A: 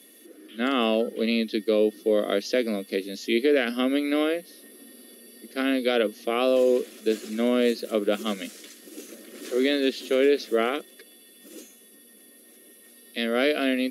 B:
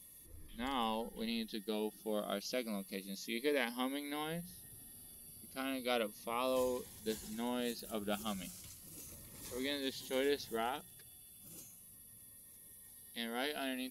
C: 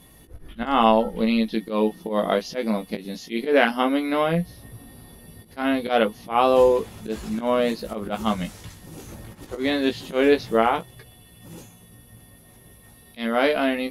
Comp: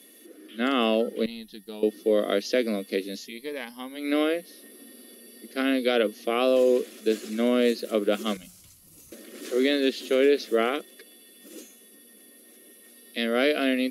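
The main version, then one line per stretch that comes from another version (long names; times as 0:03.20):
A
0:01.26–0:01.83: punch in from B
0:03.24–0:04.02: punch in from B, crossfade 0.16 s
0:08.37–0:09.12: punch in from B
not used: C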